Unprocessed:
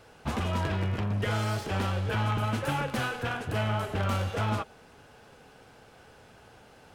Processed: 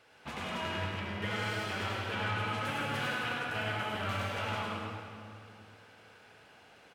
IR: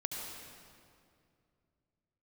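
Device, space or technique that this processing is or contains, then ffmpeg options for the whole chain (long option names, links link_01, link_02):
PA in a hall: -filter_complex "[0:a]asettb=1/sr,asplit=3[link_01][link_02][link_03];[link_01]atrim=end=1.954[link_04];[link_02]atrim=start=1.95:end=2.58,asetpts=PTS-STARTPTS,afade=type=in:duration=0.004:curve=qsin,afade=type=out:start_time=0.626:duration=0.004:curve=qsin,lowpass=12000[link_05];[link_03]atrim=start=2.576[link_06];[link_04][link_05]acrossfade=duration=0.004:curve1=hsin:curve2=qsin[link_07];[link_07][link_06]acrossfade=duration=0.004:curve1=qsin:curve2=hsin,highpass=frequency=180:poles=1,equalizer=frequency=2400:width_type=o:width=1.8:gain=8,aecho=1:1:103:0.596[link_08];[1:a]atrim=start_sample=2205[link_09];[link_08][link_09]afir=irnorm=-1:irlink=0,volume=-9dB"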